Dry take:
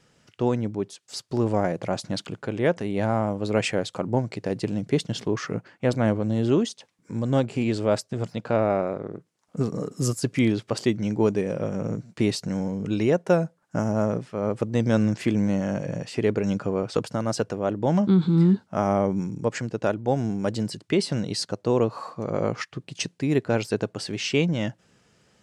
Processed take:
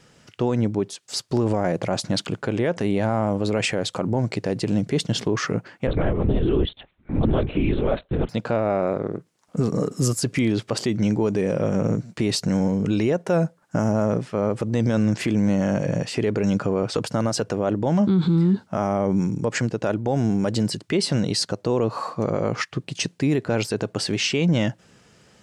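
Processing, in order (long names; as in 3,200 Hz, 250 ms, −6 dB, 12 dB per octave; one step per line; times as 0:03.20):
brickwall limiter −20 dBFS, peak gain reduction 10 dB
0:05.87–0:08.29: linear-prediction vocoder at 8 kHz whisper
level +7 dB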